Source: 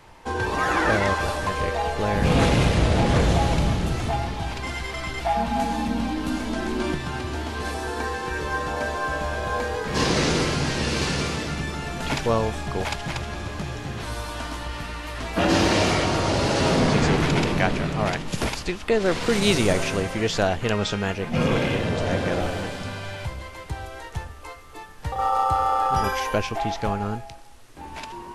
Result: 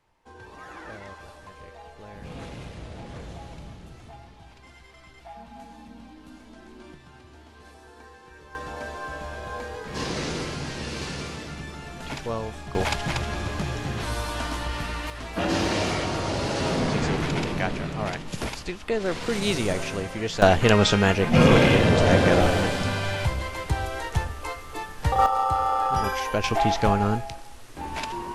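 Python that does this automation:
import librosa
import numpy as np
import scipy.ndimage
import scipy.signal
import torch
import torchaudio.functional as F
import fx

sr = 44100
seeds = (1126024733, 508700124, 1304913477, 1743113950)

y = fx.gain(x, sr, db=fx.steps((0.0, -20.0), (8.55, -8.0), (12.75, 2.0), (15.1, -5.0), (20.42, 6.0), (25.26, -2.0), (26.44, 4.5)))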